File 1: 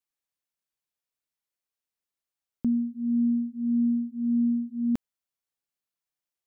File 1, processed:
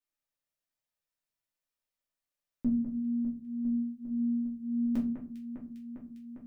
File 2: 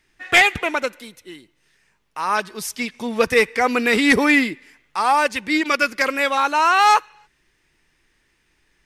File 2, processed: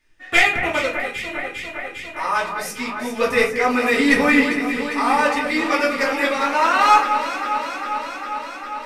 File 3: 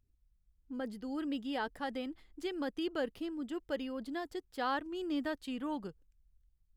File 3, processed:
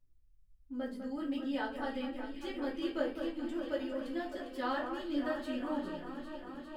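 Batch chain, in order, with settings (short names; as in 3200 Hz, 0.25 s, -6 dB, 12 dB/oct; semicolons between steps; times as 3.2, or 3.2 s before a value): echo with dull and thin repeats by turns 0.201 s, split 2200 Hz, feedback 87%, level -7.5 dB; shoebox room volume 160 m³, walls furnished, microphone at 2.6 m; gain -7.5 dB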